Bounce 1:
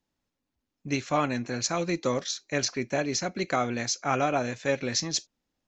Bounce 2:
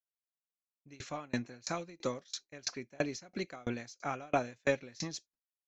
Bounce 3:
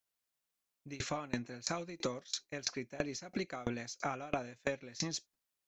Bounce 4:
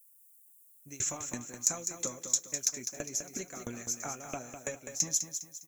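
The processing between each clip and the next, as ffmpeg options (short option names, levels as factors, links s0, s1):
-af "agate=range=0.0224:threshold=0.0112:ratio=3:detection=peak,aeval=exprs='0.299*(cos(1*acos(clip(val(0)/0.299,-1,1)))-cos(1*PI/2))+0.00422*(cos(4*acos(clip(val(0)/0.299,-1,1)))-cos(4*PI/2))':c=same,aeval=exprs='val(0)*pow(10,-32*if(lt(mod(3*n/s,1),2*abs(3)/1000),1-mod(3*n/s,1)/(2*abs(3)/1000),(mod(3*n/s,1)-2*abs(3)/1000)/(1-2*abs(3)/1000))/20)':c=same"
-af "acompressor=threshold=0.00794:ratio=6,volume=2.51"
-af "flanger=delay=7.2:depth=2:regen=-50:speed=1.2:shape=sinusoidal,aexciter=amount=14.3:drive=9.7:freq=7000,aecho=1:1:203|406|609|812:0.398|0.151|0.0575|0.0218"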